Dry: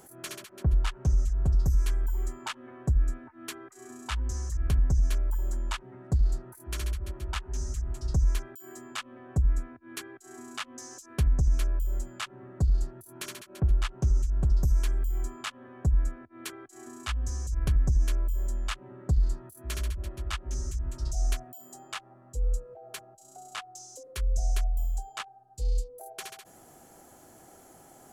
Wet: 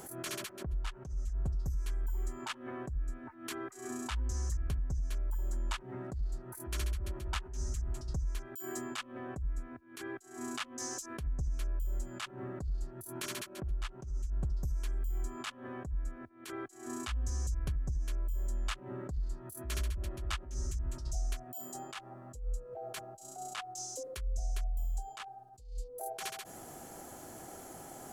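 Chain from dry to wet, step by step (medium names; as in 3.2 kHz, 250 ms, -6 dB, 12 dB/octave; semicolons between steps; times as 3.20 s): compression 12:1, threshold -36 dBFS, peak gain reduction 17.5 dB; attacks held to a fixed rise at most 110 dB/s; trim +5.5 dB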